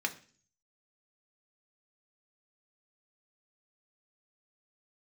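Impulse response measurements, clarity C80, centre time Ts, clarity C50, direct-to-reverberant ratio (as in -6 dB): 20.0 dB, 6 ms, 15.5 dB, 3.5 dB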